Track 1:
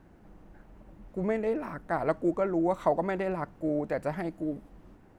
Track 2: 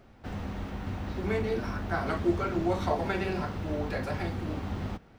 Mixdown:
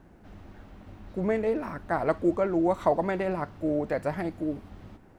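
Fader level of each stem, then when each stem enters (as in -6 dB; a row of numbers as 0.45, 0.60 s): +2.0, -14.0 dB; 0.00, 0.00 s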